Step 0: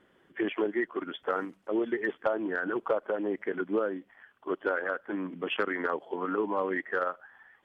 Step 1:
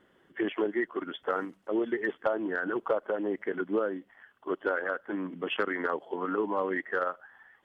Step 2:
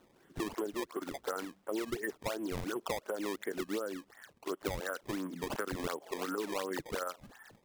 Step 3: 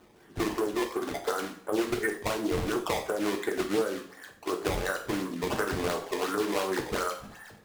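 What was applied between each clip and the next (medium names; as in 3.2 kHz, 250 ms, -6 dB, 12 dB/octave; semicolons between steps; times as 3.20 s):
band-stop 2.4 kHz, Q 15
compression 3:1, threshold -35 dBFS, peak gain reduction 10 dB; decimation with a swept rate 18×, swing 160% 2.8 Hz
two-slope reverb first 0.48 s, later 1.6 s, from -25 dB, DRR 1.5 dB; loudspeaker Doppler distortion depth 0.26 ms; trim +5.5 dB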